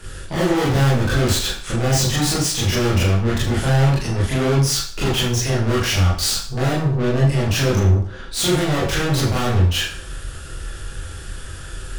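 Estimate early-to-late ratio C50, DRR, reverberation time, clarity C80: 3.5 dB, -7.0 dB, 0.45 s, 8.0 dB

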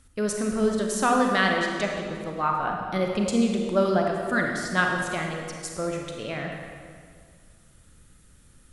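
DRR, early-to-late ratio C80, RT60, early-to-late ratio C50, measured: 1.0 dB, 3.0 dB, 2.0 s, 2.0 dB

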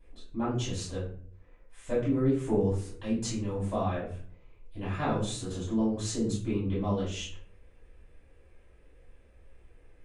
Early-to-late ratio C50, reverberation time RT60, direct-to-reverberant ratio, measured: 4.0 dB, 0.55 s, -10.5 dB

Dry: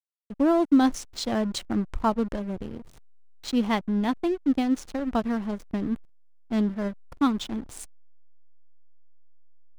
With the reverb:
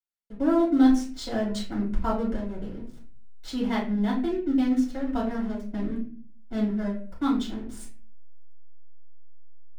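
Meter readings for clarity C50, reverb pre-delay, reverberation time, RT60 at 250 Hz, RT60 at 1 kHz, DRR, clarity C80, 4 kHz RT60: 6.5 dB, 4 ms, 0.45 s, 0.60 s, 0.40 s, -5.5 dB, 11.0 dB, 0.30 s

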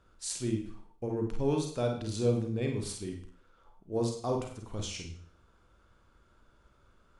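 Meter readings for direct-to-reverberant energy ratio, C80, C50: 2.0 dB, 10.0 dB, 4.5 dB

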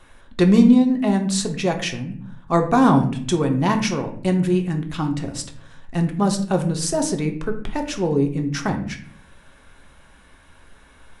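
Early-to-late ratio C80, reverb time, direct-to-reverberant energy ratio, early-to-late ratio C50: 14.0 dB, 0.55 s, 4.0 dB, 10.5 dB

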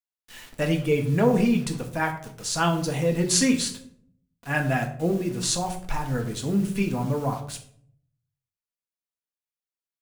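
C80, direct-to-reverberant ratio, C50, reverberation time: 13.5 dB, 3.0 dB, 10.5 dB, 0.60 s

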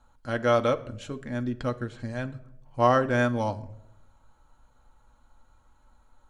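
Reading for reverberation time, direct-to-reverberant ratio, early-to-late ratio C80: no single decay rate, 5.5 dB, 20.5 dB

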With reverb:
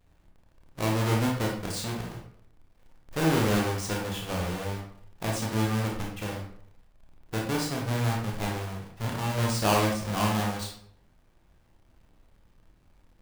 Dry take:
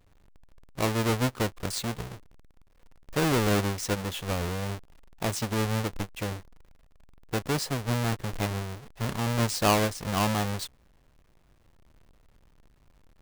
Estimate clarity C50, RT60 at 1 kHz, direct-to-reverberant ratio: 4.0 dB, 0.60 s, -1.0 dB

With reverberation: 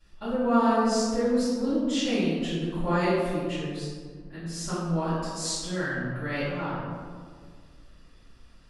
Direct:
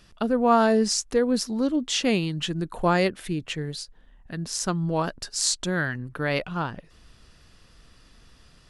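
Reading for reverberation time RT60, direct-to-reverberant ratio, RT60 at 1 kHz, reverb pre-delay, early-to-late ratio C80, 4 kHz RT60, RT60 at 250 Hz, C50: 1.8 s, -19.5 dB, 1.7 s, 3 ms, 0.5 dB, 0.85 s, 2.5 s, -2.5 dB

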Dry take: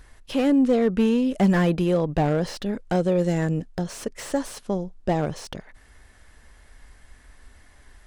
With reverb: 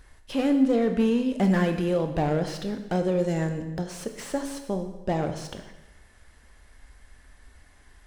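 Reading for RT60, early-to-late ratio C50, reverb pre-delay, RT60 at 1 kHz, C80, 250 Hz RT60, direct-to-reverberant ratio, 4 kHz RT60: 1.0 s, 8.5 dB, 7 ms, 1.0 s, 10.5 dB, 1.1 s, 6.0 dB, 0.90 s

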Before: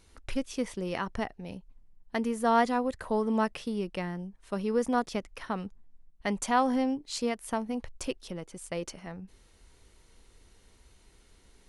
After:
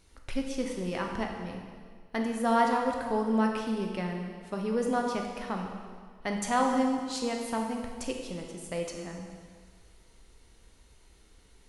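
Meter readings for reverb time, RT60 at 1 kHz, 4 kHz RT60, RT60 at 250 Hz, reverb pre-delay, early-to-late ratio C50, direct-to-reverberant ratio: 1.8 s, 1.8 s, 1.7 s, 1.8 s, 6 ms, 3.5 dB, 1.5 dB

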